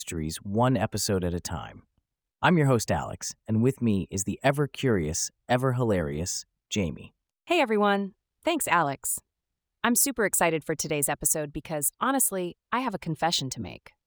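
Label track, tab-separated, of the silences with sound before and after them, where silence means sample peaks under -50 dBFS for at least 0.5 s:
1.800000	2.420000	silence
9.200000	9.840000	silence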